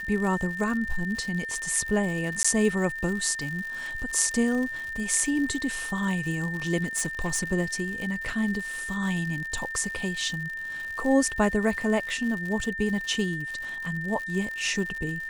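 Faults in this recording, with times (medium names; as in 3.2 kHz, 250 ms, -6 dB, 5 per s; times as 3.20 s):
crackle 130 per s -33 dBFS
whine 1.8 kHz -32 dBFS
2.43–2.44 s: dropout 15 ms
6.81–7.44 s: clipped -22 dBFS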